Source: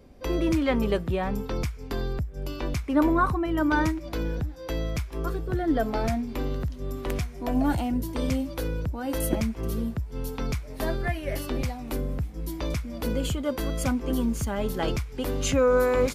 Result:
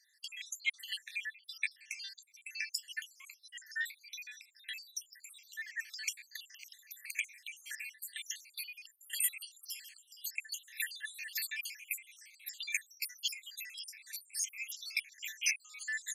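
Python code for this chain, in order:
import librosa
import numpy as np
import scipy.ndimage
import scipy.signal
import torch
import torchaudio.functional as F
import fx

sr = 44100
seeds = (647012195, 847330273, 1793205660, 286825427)

y = fx.spec_dropout(x, sr, seeds[0], share_pct=74)
y = fx.rider(y, sr, range_db=4, speed_s=2.0)
y = scipy.signal.sosfilt(scipy.signal.cheby1(6, 6, 1700.0, 'highpass', fs=sr, output='sos'), y)
y = y * 10.0 ** (8.5 / 20.0)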